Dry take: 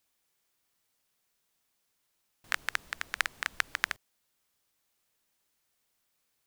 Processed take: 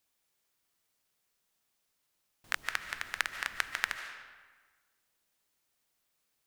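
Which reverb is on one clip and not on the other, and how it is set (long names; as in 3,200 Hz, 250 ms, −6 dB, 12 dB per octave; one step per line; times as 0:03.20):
comb and all-pass reverb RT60 1.4 s, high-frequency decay 0.75×, pre-delay 105 ms, DRR 8 dB
level −2 dB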